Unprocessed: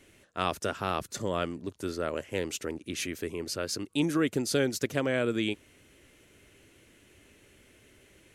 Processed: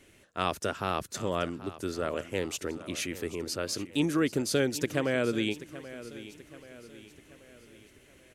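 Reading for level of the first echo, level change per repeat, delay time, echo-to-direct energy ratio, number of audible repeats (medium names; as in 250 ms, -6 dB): -15.5 dB, -6.5 dB, 782 ms, -14.5 dB, 4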